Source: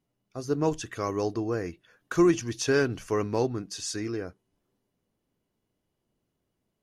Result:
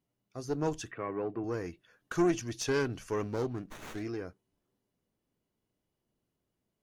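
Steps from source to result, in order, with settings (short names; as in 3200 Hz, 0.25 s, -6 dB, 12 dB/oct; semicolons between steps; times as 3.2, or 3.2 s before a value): one diode to ground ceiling -21 dBFS; 0.91–1.44 elliptic band-pass 120–2400 Hz, stop band 40 dB; 3.23–4.03 running maximum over 9 samples; gain -4 dB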